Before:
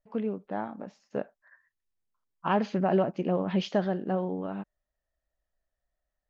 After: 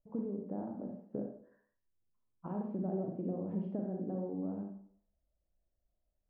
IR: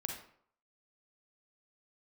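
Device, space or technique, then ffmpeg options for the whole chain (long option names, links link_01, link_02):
television next door: -filter_complex "[0:a]acompressor=threshold=-38dB:ratio=4,lowpass=470[link_01];[1:a]atrim=start_sample=2205[link_02];[link_01][link_02]afir=irnorm=-1:irlink=0,volume=3.5dB"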